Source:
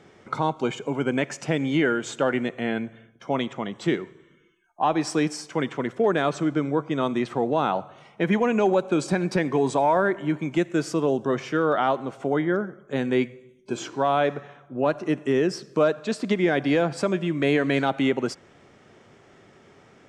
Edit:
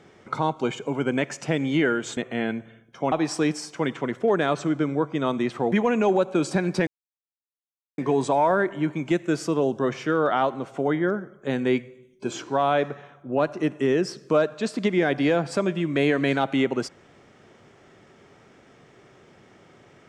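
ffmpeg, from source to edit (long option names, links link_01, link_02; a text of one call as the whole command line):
ffmpeg -i in.wav -filter_complex "[0:a]asplit=5[link_01][link_02][link_03][link_04][link_05];[link_01]atrim=end=2.172[link_06];[link_02]atrim=start=2.438:end=3.392[link_07];[link_03]atrim=start=4.878:end=7.482[link_08];[link_04]atrim=start=8.288:end=9.44,asetpts=PTS-STARTPTS,afade=type=out:start_time=1.148:duration=0.004:curve=hsin,apad=pad_dur=1.11[link_09];[link_05]atrim=start=9.44,asetpts=PTS-STARTPTS,afade=type=in:duration=0.004:curve=hsin[link_10];[link_06][link_07]acrossfade=duration=0.004:curve1=hsin:curve2=hsin[link_11];[link_11][link_08]acrossfade=duration=0.004:curve1=hsin:curve2=hsin[link_12];[link_09][link_10]concat=n=2:v=0:a=1[link_13];[link_12][link_13]acrossfade=duration=0.004:curve1=hsin:curve2=hsin" out.wav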